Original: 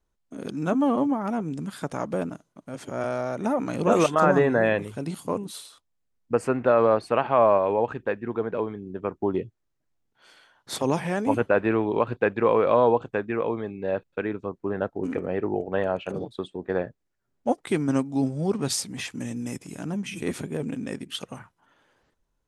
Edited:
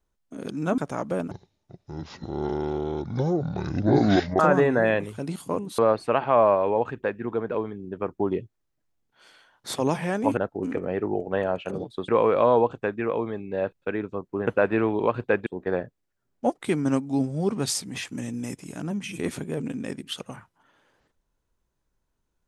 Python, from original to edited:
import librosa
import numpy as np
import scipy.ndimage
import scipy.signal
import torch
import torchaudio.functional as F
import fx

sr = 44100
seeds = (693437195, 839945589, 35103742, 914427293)

y = fx.edit(x, sr, fx.cut(start_s=0.78, length_s=1.02),
    fx.speed_span(start_s=2.33, length_s=1.85, speed=0.6),
    fx.cut(start_s=5.57, length_s=1.24),
    fx.swap(start_s=11.4, length_s=0.99, other_s=14.78, other_length_s=1.71), tone=tone)